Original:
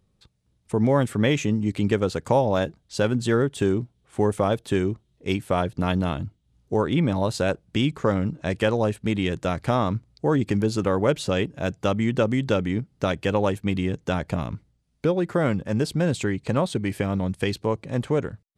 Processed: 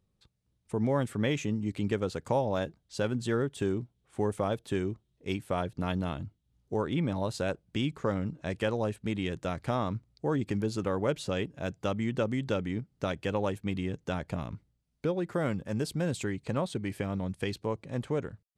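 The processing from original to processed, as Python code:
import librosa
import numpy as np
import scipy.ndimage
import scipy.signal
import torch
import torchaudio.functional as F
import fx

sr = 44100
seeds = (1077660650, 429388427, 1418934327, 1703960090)

y = fx.high_shelf(x, sr, hz=9400.0, db=8.5, at=(15.32, 16.45))
y = y * 10.0 ** (-8.0 / 20.0)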